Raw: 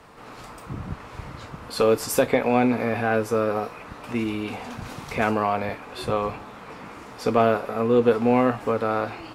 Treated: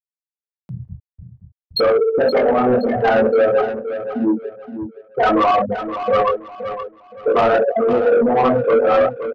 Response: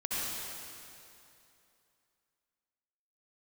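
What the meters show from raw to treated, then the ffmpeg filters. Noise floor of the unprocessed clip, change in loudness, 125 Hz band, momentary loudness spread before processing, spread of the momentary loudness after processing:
-42 dBFS, +6.5 dB, -0.5 dB, 19 LU, 16 LU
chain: -filter_complex "[0:a]flanger=delay=0.4:depth=3.7:regen=-11:speed=1.4:shape=triangular,asplit=2[s0][s1];[s1]aecho=0:1:40|90|152.5|230.6|328.3:0.631|0.398|0.251|0.158|0.1[s2];[s0][s2]amix=inputs=2:normalize=0,afftfilt=real='re*gte(hypot(re,im),0.224)':imag='im*gte(hypot(re,im),0.224)':win_size=1024:overlap=0.75,apsyclip=17.8,flanger=delay=19.5:depth=4.9:speed=0.51,highpass=f=590:p=1,asoftclip=type=tanh:threshold=0.316,asplit=2[s3][s4];[s4]aecho=0:1:521|1042|1563:0.299|0.0836|0.0234[s5];[s3][s5]amix=inputs=2:normalize=0,acompressor=mode=upward:threshold=0.0141:ratio=2.5"

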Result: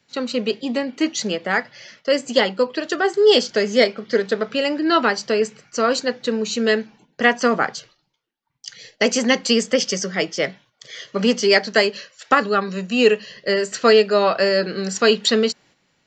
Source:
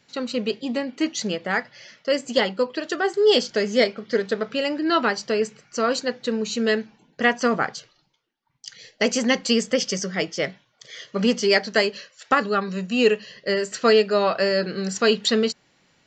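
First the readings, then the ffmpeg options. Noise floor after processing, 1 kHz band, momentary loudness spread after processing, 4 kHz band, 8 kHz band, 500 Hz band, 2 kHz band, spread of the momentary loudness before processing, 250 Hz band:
-69 dBFS, +3.5 dB, 10 LU, +3.5 dB, +3.5 dB, +3.5 dB, +3.5 dB, 10 LU, +2.5 dB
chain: -filter_complex "[0:a]agate=range=0.447:threshold=0.00251:ratio=16:detection=peak,acrossover=split=170|1100|1900[s0][s1][s2][s3];[s0]acompressor=threshold=0.00447:ratio=6[s4];[s4][s1][s2][s3]amix=inputs=4:normalize=0,volume=1.5"

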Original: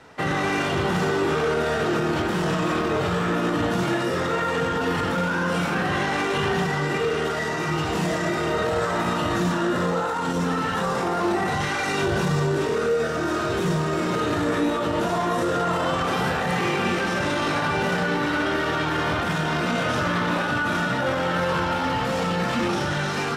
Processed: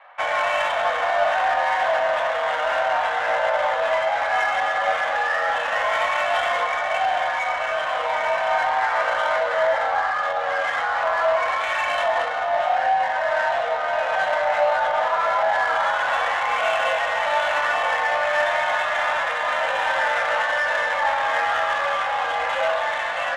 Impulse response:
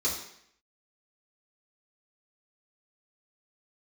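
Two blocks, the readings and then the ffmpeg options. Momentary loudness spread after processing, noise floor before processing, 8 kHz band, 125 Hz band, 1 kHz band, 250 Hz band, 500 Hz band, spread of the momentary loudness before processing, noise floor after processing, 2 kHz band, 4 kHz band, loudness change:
3 LU, -26 dBFS, -5.5 dB, under -25 dB, +5.5 dB, under -25 dB, +1.5 dB, 1 LU, -25 dBFS, +5.0 dB, 0.0 dB, +2.0 dB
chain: -filter_complex "[0:a]highpass=f=270:t=q:w=0.5412,highpass=f=270:t=q:w=1.307,lowpass=f=3500:t=q:w=0.5176,lowpass=f=3500:t=q:w=0.7071,lowpass=f=3500:t=q:w=1.932,afreqshift=300,flanger=delay=9.7:depth=1.7:regen=77:speed=0.97:shape=sinusoidal,adynamicsmooth=sensitivity=5:basefreq=2500,asplit=2[s0][s1];[1:a]atrim=start_sample=2205,asetrate=41454,aresample=44100,lowshelf=f=360:g=11.5[s2];[s1][s2]afir=irnorm=-1:irlink=0,volume=0.0891[s3];[s0][s3]amix=inputs=2:normalize=0,volume=2.37"

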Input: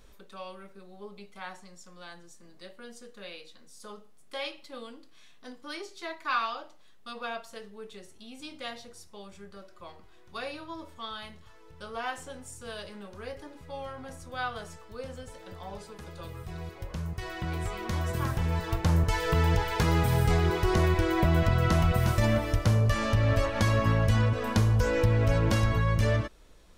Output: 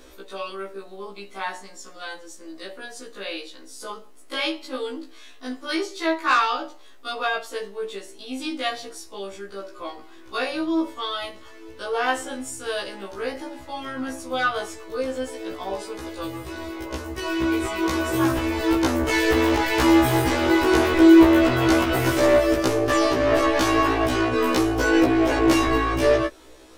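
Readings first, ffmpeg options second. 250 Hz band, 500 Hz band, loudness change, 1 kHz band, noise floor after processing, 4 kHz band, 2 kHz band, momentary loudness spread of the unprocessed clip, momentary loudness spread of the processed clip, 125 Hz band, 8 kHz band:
+13.0 dB, +10.5 dB, +6.0 dB, +9.0 dB, -44 dBFS, +9.5 dB, +9.5 dB, 21 LU, 19 LU, -6.5 dB, +9.0 dB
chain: -af "aeval=exprs='0.224*sin(PI/2*2*val(0)/0.224)':c=same,lowshelf=f=230:t=q:w=3:g=-8.5,afftfilt=real='re*1.73*eq(mod(b,3),0)':imag='im*1.73*eq(mod(b,3),0)':win_size=2048:overlap=0.75,volume=1.5"

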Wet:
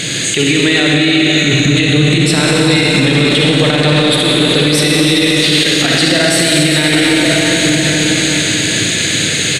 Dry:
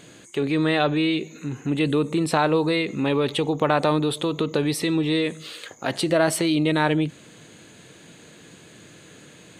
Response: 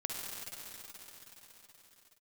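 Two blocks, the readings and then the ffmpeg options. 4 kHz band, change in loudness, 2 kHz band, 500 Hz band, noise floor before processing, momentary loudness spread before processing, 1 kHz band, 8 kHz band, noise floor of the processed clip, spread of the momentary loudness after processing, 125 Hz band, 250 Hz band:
+21.0 dB, +12.5 dB, +17.5 dB, +9.0 dB, -49 dBFS, 9 LU, +5.0 dB, +21.5 dB, -15 dBFS, 2 LU, +14.5 dB, +11.5 dB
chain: -filter_complex "[0:a]equalizer=f=125:t=o:w=1:g=4,equalizer=f=1000:t=o:w=1:g=-10,equalizer=f=2000:t=o:w=1:g=9,equalizer=f=4000:t=o:w=1:g=9,equalizer=f=8000:t=o:w=1:g=7,acompressor=threshold=0.0316:ratio=6,asplit=2[s0][s1];[s1]adelay=1108,volume=0.398,highshelf=f=4000:g=-24.9[s2];[s0][s2]amix=inputs=2:normalize=0[s3];[1:a]atrim=start_sample=2205[s4];[s3][s4]afir=irnorm=-1:irlink=0,alimiter=level_in=18.8:limit=0.891:release=50:level=0:latency=1,volume=0.891"

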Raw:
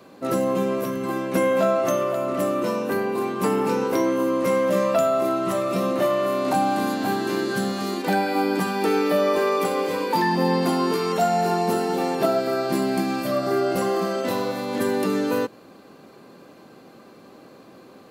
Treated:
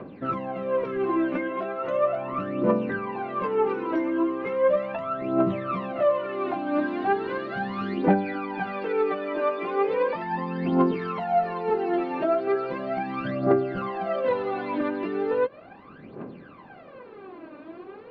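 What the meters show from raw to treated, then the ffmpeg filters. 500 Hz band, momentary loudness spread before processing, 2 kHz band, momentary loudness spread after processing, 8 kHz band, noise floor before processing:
-3.5 dB, 5 LU, -4.0 dB, 8 LU, under -35 dB, -48 dBFS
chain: -af "acompressor=threshold=0.0447:ratio=6,aphaser=in_gain=1:out_gain=1:delay=3.4:decay=0.78:speed=0.37:type=triangular,lowpass=f=2700:w=0.5412,lowpass=f=2700:w=1.3066"

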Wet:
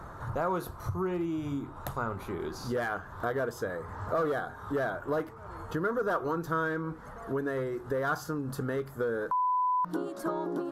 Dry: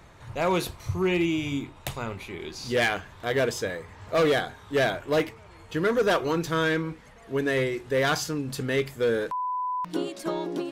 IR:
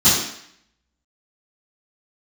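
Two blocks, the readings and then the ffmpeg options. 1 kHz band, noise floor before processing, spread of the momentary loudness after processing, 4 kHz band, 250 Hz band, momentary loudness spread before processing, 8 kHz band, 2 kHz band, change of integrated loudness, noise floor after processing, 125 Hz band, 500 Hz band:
-1.0 dB, -50 dBFS, 7 LU, -17.5 dB, -5.0 dB, 11 LU, -12.0 dB, -7.5 dB, -5.5 dB, -46 dBFS, -4.5 dB, -6.0 dB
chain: -af "equalizer=f=12000:w=2.5:g=10,acompressor=threshold=0.0126:ratio=4,highshelf=f=1800:t=q:w=3:g=-9.5,volume=2"

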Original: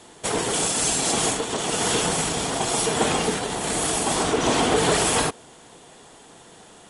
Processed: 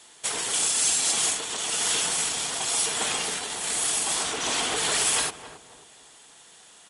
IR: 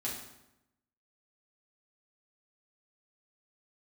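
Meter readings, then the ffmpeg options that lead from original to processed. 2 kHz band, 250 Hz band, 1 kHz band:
-3.0 dB, -15.0 dB, -8.0 dB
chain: -filter_complex "[0:a]tiltshelf=f=970:g=-9,aeval=exprs='0.75*(cos(1*acos(clip(val(0)/0.75,-1,1)))-cos(1*PI/2))+0.0168*(cos(3*acos(clip(val(0)/0.75,-1,1)))-cos(3*PI/2))':c=same,asplit=2[s0][s1];[s1]adelay=269,lowpass=f=1000:p=1,volume=0.316,asplit=2[s2][s3];[s3]adelay=269,lowpass=f=1000:p=1,volume=0.42,asplit=2[s4][s5];[s5]adelay=269,lowpass=f=1000:p=1,volume=0.42,asplit=2[s6][s7];[s7]adelay=269,lowpass=f=1000:p=1,volume=0.42[s8];[s0][s2][s4][s6][s8]amix=inputs=5:normalize=0,volume=0.422"

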